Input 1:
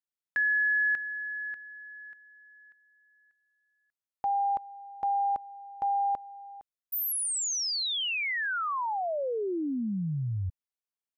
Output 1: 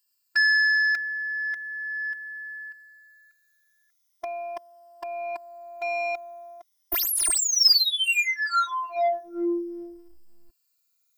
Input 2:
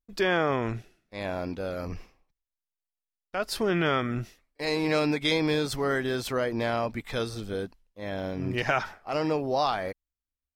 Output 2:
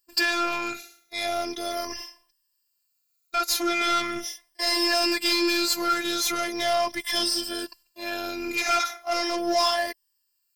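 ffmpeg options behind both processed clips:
-filter_complex "[0:a]afftfilt=real='re*pow(10,13/40*sin(2*PI*(1.3*log(max(b,1)*sr/1024/100)/log(2)-(-0.39)*(pts-256)/sr)))':imag='im*pow(10,13/40*sin(2*PI*(1.3*log(max(b,1)*sr/1024/100)/log(2)-(-0.39)*(pts-256)/sr)))':win_size=1024:overlap=0.75,aemphasis=mode=production:type=75fm,asplit=2[a][b];[b]highpass=f=720:p=1,volume=25dB,asoftclip=type=tanh:threshold=-5dB[c];[a][c]amix=inputs=2:normalize=0,lowpass=f=6.9k:p=1,volume=-6dB,afftfilt=real='hypot(re,im)*cos(PI*b)':imag='0':win_size=512:overlap=0.75,equalizer=f=5.1k:w=4.2:g=8,volume=-7.5dB"

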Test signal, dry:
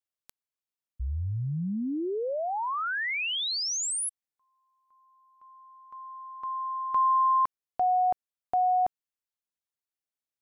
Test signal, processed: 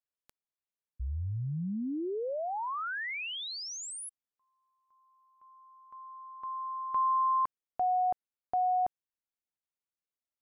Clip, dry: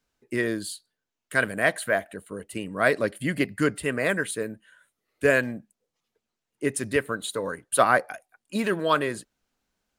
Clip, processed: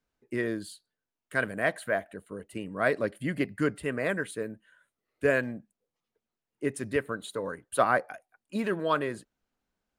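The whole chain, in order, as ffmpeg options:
-af "highshelf=f=2.8k:g=-8,volume=-3.5dB"

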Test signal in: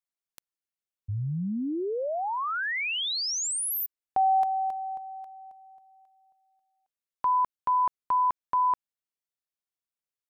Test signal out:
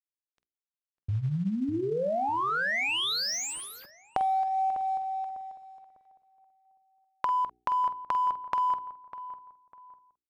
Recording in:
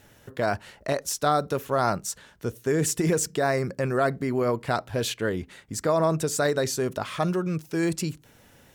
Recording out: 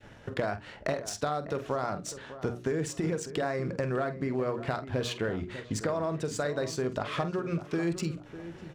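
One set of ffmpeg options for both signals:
-filter_complex "[0:a]agate=range=-33dB:threshold=-54dB:ratio=3:release=86:detection=peak,bandreject=f=60:t=h:w=6,bandreject=f=120:t=h:w=6,bandreject=f=180:t=h:w=6,bandreject=f=240:t=h:w=6,bandreject=f=300:t=h:w=6,bandreject=f=360:t=h:w=6,bandreject=f=420:t=h:w=6,adynamicequalizer=threshold=0.00891:dfrequency=930:dqfactor=6.3:tfrequency=930:tqfactor=6.3:attack=5:release=100:ratio=0.438:range=3.5:mode=cutabove:tftype=bell,acompressor=threshold=-33dB:ratio=16:attack=8.4:release=476:knee=6:detection=peak,asplit=2[a][b];[b]adelay=47,volume=-11dB[c];[a][c]amix=inputs=2:normalize=0,acrusher=bits=7:mode=log:mix=0:aa=0.000001,asplit=2[d][e];[e]adelay=600,lowpass=f=1.9k:p=1,volume=-13dB,asplit=2[f][g];[g]adelay=600,lowpass=f=1.9k:p=1,volume=0.32,asplit=2[h][i];[i]adelay=600,lowpass=f=1.9k:p=1,volume=0.32[j];[d][f][h][j]amix=inputs=4:normalize=0,adynamicsmooth=sensitivity=7:basefreq=3.9k,volume=7dB"

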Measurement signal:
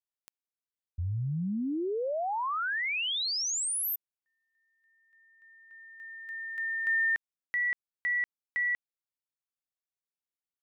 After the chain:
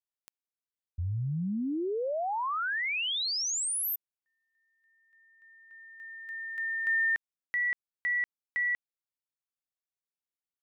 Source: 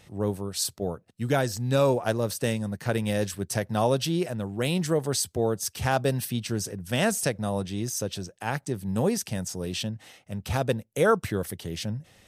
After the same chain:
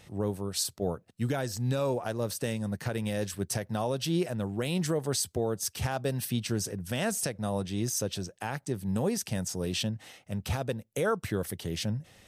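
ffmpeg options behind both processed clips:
-af "alimiter=limit=-19dB:level=0:latency=1:release=276"

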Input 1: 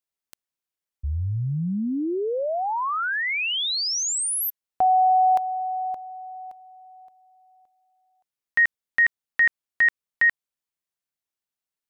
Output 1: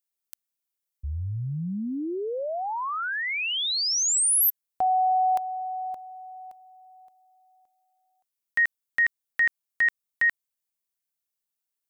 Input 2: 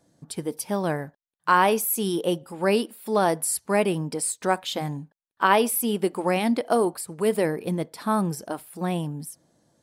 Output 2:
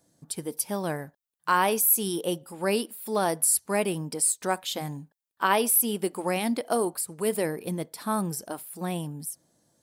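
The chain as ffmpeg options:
-af "crystalizer=i=1.5:c=0,volume=-4.5dB"

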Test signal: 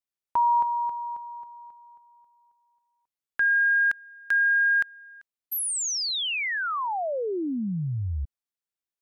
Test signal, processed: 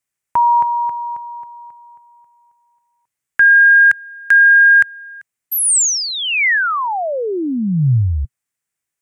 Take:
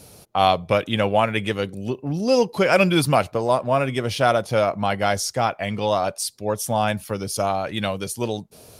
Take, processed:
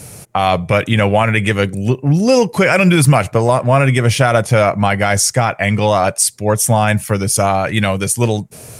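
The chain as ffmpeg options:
-af "equalizer=f=125:t=o:w=1:g=9,equalizer=f=2k:t=o:w=1:g=8,equalizer=f=4k:t=o:w=1:g=-6,equalizer=f=8k:t=o:w=1:g=9,alimiter=level_in=8.5dB:limit=-1dB:release=50:level=0:latency=1,volume=-1dB"

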